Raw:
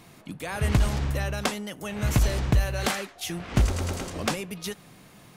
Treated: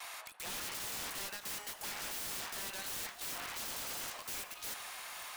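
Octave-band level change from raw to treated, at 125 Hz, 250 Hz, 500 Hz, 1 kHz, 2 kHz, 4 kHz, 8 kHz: -34.0 dB, -25.0 dB, -19.0 dB, -11.5 dB, -9.5 dB, -6.5 dB, -4.0 dB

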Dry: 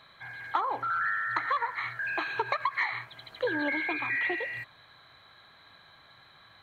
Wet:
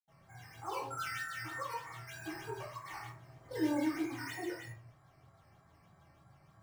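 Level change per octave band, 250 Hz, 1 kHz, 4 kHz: +2.0 dB, -11.5 dB, -7.0 dB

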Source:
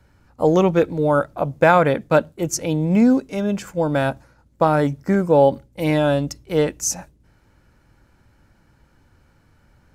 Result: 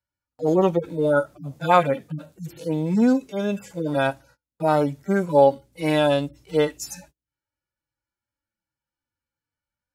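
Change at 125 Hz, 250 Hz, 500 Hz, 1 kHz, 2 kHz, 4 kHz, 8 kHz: -5.5 dB, -4.0 dB, -3.0 dB, -2.0 dB, -4.5 dB, -0.5 dB, -12.5 dB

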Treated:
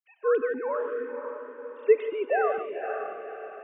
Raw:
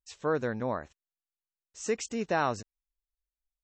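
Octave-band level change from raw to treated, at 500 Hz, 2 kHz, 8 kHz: +8.5 dB, +3.0 dB, under -40 dB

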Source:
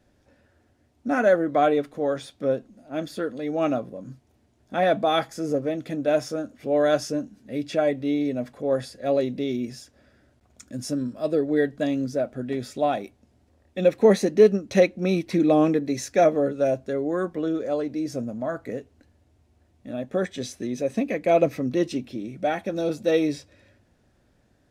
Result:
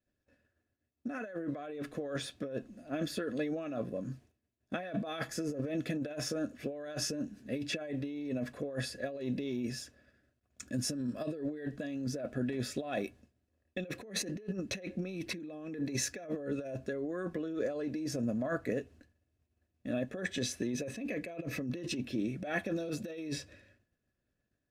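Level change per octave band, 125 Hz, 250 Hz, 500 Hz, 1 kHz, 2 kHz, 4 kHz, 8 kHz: -7.5 dB, -10.5 dB, -16.5 dB, -19.0 dB, -8.5 dB, -5.0 dB, -1.0 dB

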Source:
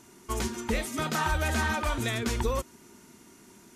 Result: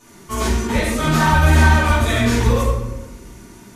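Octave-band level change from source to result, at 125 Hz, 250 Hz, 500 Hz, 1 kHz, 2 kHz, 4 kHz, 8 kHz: +17.5 dB, +13.5 dB, +11.0 dB, +12.5 dB, +12.0 dB, +10.0 dB, +8.5 dB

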